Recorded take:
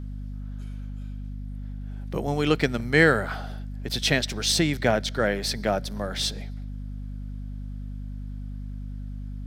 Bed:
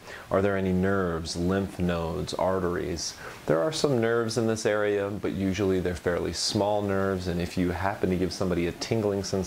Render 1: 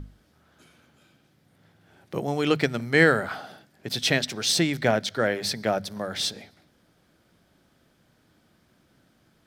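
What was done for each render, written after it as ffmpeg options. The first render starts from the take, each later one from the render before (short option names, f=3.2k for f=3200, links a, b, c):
-af "bandreject=f=50:t=h:w=6,bandreject=f=100:t=h:w=6,bandreject=f=150:t=h:w=6,bandreject=f=200:t=h:w=6,bandreject=f=250:t=h:w=6"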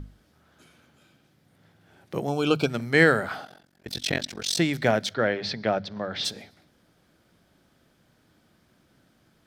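-filter_complex "[0:a]asettb=1/sr,asplit=3[a][b][c];[a]atrim=end=2.294[d];[b]atrim=start=2.29:end=2.7,asetpts=PTS-STARTPTS,afade=t=in:d=0.004:c=qsin,afade=t=out:st=0.406:d=0.004:c=qsin,asuperstop=centerf=1900:order=20:qfactor=2.9[e];[c]atrim=start=2.696[f];[d][e]acrossfade=d=0.004:c1=hsin:c2=qsin[g];[g][f]acrossfade=d=0.004:c1=qsin:c2=hsin,asplit=3[h][i][j];[h]afade=t=out:st=3.44:d=0.02[k];[i]tremolo=f=45:d=1,afade=t=in:st=3.44:d=0.02,afade=t=out:st=4.58:d=0.02[l];[j]afade=t=in:st=4.58:d=0.02[m];[k][l][m]amix=inputs=3:normalize=0,asplit=3[n][o][p];[n]afade=t=out:st=5.13:d=0.02[q];[o]lowpass=f=4.6k:w=0.5412,lowpass=f=4.6k:w=1.3066,afade=t=in:st=5.13:d=0.02,afade=t=out:st=6.24:d=0.02[r];[p]afade=t=in:st=6.24:d=0.02[s];[q][r][s]amix=inputs=3:normalize=0"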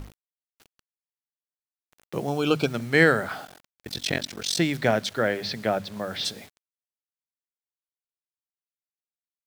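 -af "acrusher=bits=7:mix=0:aa=0.000001"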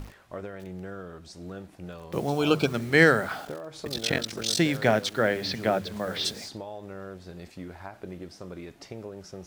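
-filter_complex "[1:a]volume=-14dB[a];[0:a][a]amix=inputs=2:normalize=0"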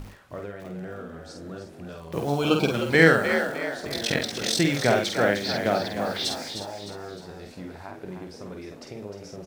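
-filter_complex "[0:a]asplit=2[a][b];[b]adelay=49,volume=-4.5dB[c];[a][c]amix=inputs=2:normalize=0,asplit=6[d][e][f][g][h][i];[e]adelay=306,afreqshift=61,volume=-8.5dB[j];[f]adelay=612,afreqshift=122,volume=-15.8dB[k];[g]adelay=918,afreqshift=183,volume=-23.2dB[l];[h]adelay=1224,afreqshift=244,volume=-30.5dB[m];[i]adelay=1530,afreqshift=305,volume=-37.8dB[n];[d][j][k][l][m][n]amix=inputs=6:normalize=0"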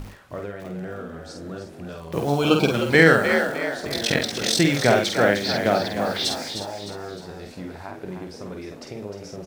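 -af "volume=3.5dB,alimiter=limit=-2dB:level=0:latency=1"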